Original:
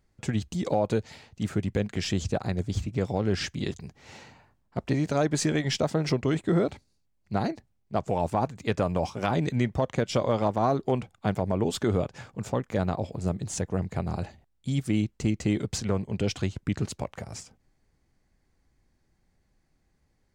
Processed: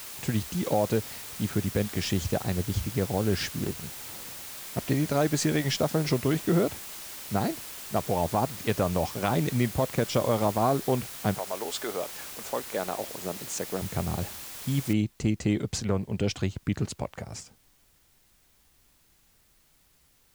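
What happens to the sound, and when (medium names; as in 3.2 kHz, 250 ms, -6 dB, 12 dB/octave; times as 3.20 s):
3.52–4.86 s: median filter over 25 samples
11.37–13.81 s: high-pass 690 Hz -> 260 Hz
14.93 s: noise floor step -41 dB -65 dB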